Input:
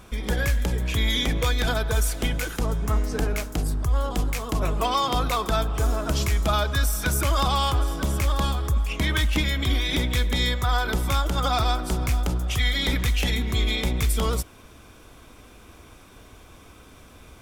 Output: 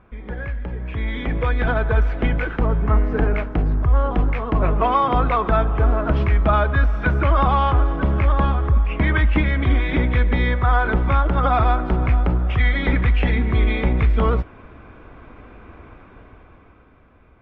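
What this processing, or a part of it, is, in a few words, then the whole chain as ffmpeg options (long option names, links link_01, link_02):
action camera in a waterproof case: -af "lowpass=frequency=2200:width=0.5412,lowpass=frequency=2200:width=1.3066,dynaudnorm=framelen=210:gausssize=13:maxgain=13.5dB,volume=-5dB" -ar 48000 -c:a aac -b:a 64k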